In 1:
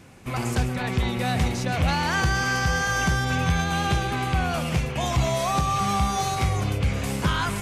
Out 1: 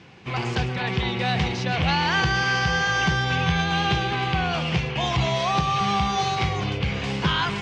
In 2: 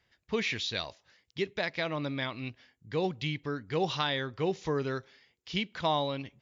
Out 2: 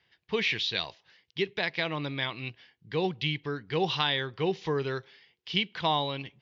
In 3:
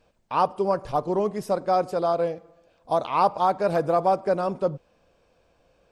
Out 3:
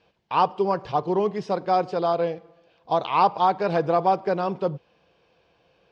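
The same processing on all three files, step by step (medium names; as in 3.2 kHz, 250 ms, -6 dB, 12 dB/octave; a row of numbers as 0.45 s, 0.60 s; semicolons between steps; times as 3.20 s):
cabinet simulation 100–5100 Hz, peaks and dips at 100 Hz -5 dB, 250 Hz -9 dB, 590 Hz -7 dB, 1.3 kHz -4 dB, 3 kHz +4 dB; trim +3.5 dB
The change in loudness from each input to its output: +1.0 LU, +2.5 LU, +1.0 LU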